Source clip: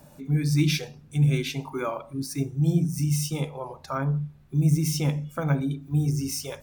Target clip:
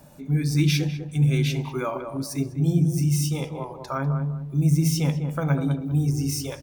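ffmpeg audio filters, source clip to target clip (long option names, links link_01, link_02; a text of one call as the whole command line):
ffmpeg -i in.wav -filter_complex "[0:a]asplit=2[link_01][link_02];[link_02]adelay=198,lowpass=frequency=970:poles=1,volume=-5.5dB,asplit=2[link_03][link_04];[link_04]adelay=198,lowpass=frequency=970:poles=1,volume=0.34,asplit=2[link_05][link_06];[link_06]adelay=198,lowpass=frequency=970:poles=1,volume=0.34,asplit=2[link_07][link_08];[link_08]adelay=198,lowpass=frequency=970:poles=1,volume=0.34[link_09];[link_01][link_03][link_05][link_07][link_09]amix=inputs=5:normalize=0,volume=1dB" out.wav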